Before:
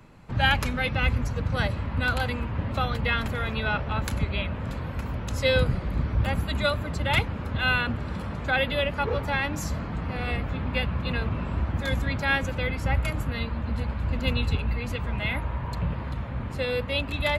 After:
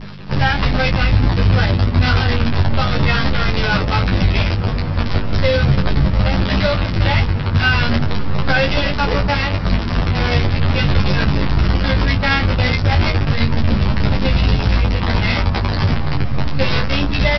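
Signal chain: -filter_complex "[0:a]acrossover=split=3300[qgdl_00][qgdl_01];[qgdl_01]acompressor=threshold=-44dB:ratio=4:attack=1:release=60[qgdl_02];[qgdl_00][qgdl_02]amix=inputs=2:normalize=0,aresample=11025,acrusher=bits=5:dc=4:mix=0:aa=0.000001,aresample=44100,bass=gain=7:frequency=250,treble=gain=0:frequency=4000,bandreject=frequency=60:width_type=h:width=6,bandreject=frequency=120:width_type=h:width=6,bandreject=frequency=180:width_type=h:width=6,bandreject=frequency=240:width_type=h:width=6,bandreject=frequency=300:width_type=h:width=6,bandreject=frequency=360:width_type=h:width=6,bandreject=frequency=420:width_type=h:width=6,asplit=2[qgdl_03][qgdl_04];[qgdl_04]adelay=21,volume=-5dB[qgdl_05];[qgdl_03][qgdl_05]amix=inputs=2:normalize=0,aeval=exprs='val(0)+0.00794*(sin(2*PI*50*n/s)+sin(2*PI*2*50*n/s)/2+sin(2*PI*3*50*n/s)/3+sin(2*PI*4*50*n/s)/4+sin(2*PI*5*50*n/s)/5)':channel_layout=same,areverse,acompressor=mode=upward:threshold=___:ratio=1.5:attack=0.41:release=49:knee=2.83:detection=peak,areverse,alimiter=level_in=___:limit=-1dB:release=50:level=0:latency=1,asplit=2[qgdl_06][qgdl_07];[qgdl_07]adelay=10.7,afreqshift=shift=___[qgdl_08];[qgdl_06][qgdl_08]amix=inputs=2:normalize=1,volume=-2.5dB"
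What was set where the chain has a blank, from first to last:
-26dB, 16dB, -0.37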